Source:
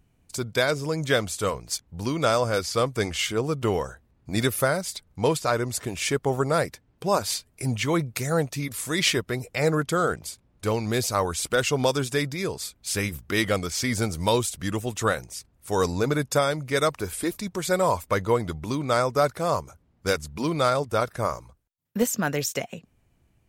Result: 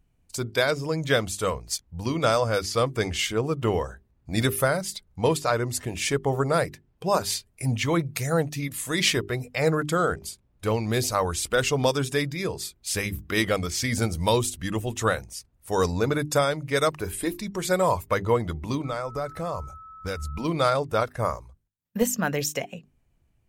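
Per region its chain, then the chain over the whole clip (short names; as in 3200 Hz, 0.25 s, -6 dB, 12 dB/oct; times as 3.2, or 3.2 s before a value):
18.84–20.44 low shelf 71 Hz +11.5 dB + compressor 3:1, threshold -28 dBFS + whine 1300 Hz -42 dBFS
whole clip: spectral noise reduction 6 dB; low shelf 71 Hz +9 dB; notches 50/100/150/200/250/300/350/400 Hz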